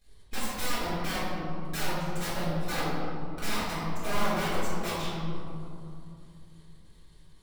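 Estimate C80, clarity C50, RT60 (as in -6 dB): -0.5 dB, -3.0 dB, 2.7 s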